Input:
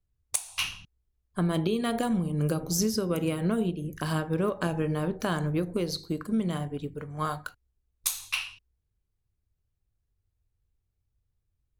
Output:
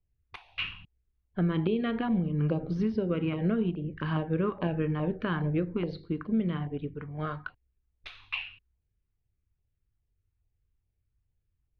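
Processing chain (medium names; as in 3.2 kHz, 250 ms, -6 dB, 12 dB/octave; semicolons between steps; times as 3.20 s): LFO notch saw down 2.4 Hz 480–1600 Hz; inverse Chebyshev low-pass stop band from 7 kHz, stop band 50 dB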